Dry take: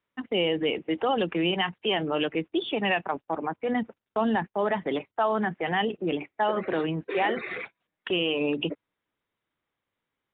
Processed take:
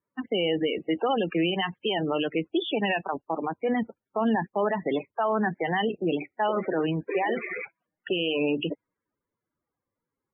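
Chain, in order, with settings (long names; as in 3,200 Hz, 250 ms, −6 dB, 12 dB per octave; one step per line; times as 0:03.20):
brickwall limiter −18.5 dBFS, peak gain reduction 4.5 dB
spectral peaks only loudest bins 32
low-pass that shuts in the quiet parts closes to 1,300 Hz, open at −24 dBFS
level +2 dB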